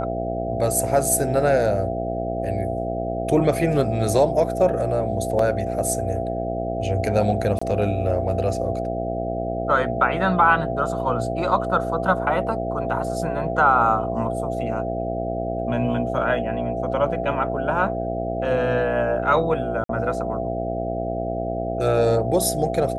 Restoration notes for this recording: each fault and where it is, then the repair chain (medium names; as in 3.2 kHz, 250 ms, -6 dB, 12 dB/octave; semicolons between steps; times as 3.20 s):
buzz 60 Hz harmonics 13 -28 dBFS
whine 670 Hz -27 dBFS
5.39 s: dropout 2.8 ms
7.59–7.62 s: dropout 25 ms
19.84–19.89 s: dropout 53 ms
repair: de-hum 60 Hz, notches 13; band-stop 670 Hz, Q 30; interpolate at 5.39 s, 2.8 ms; interpolate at 7.59 s, 25 ms; interpolate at 19.84 s, 53 ms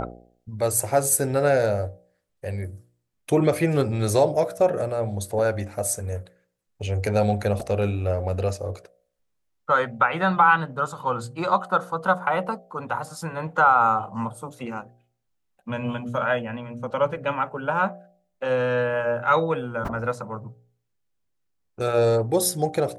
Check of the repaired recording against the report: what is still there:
nothing left